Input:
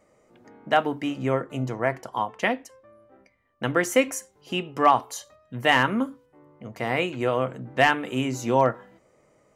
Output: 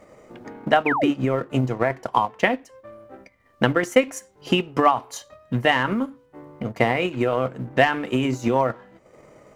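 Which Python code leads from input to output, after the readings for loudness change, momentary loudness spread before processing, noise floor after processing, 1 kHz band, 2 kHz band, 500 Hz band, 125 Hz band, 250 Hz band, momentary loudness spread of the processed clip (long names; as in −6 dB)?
+2.5 dB, 12 LU, −58 dBFS, +1.5 dB, +1.5 dB, +3.0 dB, +4.5 dB, +4.5 dB, 13 LU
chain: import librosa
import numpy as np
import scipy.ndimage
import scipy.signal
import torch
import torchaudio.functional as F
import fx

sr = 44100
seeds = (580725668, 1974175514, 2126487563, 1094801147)

p1 = fx.law_mismatch(x, sr, coded='mu')
p2 = fx.high_shelf(p1, sr, hz=6000.0, db=-8.5)
p3 = fx.over_compress(p2, sr, threshold_db=-26.0, ratio=-0.5)
p4 = p2 + (p3 * 10.0 ** (-2.0 / 20.0))
p5 = fx.transient(p4, sr, attack_db=8, sustain_db=-8)
p6 = fx.spec_paint(p5, sr, seeds[0], shape='fall', start_s=0.86, length_s=0.25, low_hz=250.0, high_hz=2700.0, level_db=-20.0)
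y = p6 * 10.0 ** (-3.0 / 20.0)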